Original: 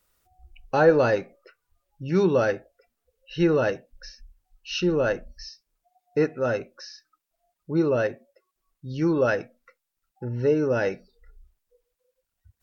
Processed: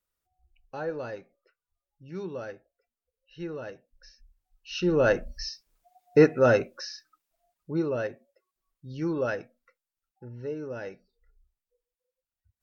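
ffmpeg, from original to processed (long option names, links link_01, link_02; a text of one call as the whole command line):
ffmpeg -i in.wav -af "volume=5dB,afade=type=in:start_time=3.67:duration=1.08:silence=0.334965,afade=type=in:start_time=4.75:duration=0.54:silence=0.281838,afade=type=out:start_time=6.58:duration=1.29:silence=0.266073,afade=type=out:start_time=9.25:duration=1.17:silence=0.473151" out.wav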